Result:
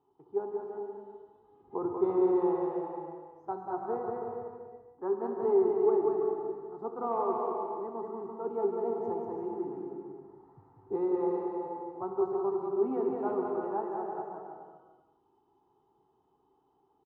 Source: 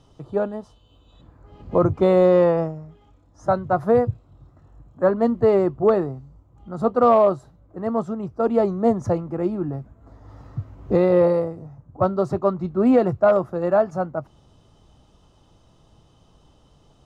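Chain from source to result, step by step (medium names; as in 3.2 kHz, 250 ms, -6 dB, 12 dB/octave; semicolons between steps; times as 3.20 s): two resonant band-passes 580 Hz, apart 1.1 oct; bouncing-ball echo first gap 190 ms, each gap 0.75×, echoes 5; gated-style reverb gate 440 ms flat, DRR 2.5 dB; trim -6 dB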